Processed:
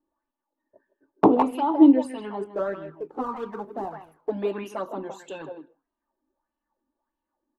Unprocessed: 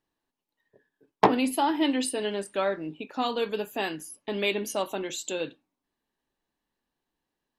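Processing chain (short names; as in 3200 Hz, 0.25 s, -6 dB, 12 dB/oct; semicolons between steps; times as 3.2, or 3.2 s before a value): 2.44–4.31 median filter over 25 samples; resonant high shelf 1700 Hz -13 dB, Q 1.5; envelope flanger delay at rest 3.4 ms, full sweep at -20 dBFS; speakerphone echo 0.16 s, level -8 dB; on a send at -23 dB: reverb RT60 0.20 s, pre-delay 0.127 s; on the sum: LFO bell 1.6 Hz 280–3000 Hz +13 dB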